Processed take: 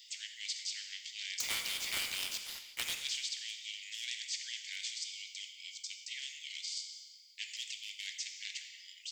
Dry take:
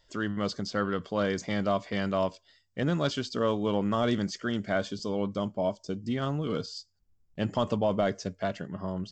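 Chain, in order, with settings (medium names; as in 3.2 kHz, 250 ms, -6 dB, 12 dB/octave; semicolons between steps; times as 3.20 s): steep high-pass 2.1 kHz 96 dB/octave; 1.40–2.95 s: waveshaping leveller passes 3; two-slope reverb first 0.86 s, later 2.6 s, from -21 dB, DRR 8.5 dB; spectrum-flattening compressor 2:1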